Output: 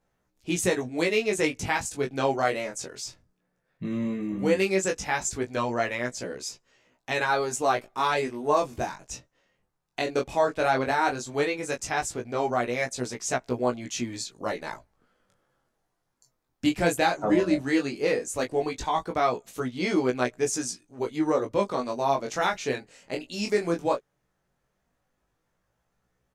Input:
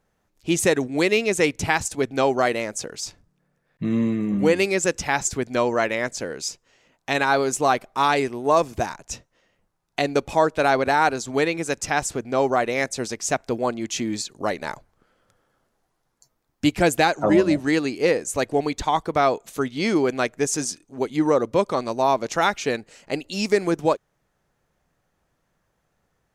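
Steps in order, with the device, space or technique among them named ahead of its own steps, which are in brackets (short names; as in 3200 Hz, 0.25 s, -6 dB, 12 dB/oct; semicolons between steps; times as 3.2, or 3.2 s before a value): double-tracked vocal (doubler 16 ms -8 dB; chorus 0.15 Hz, delay 16 ms, depth 7.8 ms); gain -2.5 dB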